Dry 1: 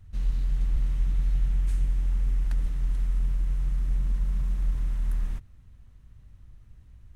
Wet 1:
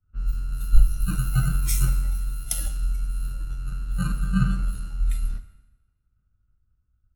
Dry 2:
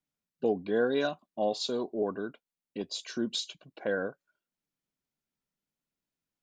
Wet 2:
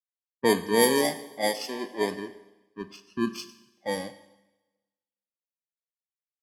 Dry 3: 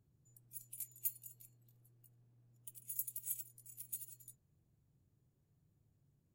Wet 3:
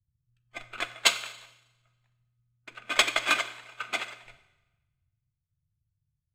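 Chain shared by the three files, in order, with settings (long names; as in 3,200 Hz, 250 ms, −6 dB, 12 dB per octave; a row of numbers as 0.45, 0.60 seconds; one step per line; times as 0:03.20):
samples in bit-reversed order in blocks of 32 samples
low-pass that shuts in the quiet parts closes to 2,100 Hz, open at −20.5 dBFS
noise reduction from a noise print of the clip's start 17 dB
in parallel at +1.5 dB: downward compressor, threshold −41 dBFS
on the sum: four-comb reverb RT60 2.6 s, combs from 31 ms, DRR 9.5 dB
multiband upward and downward expander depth 100%
loudness normalisation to −27 LKFS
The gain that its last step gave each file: +13.0, +1.5, +16.0 decibels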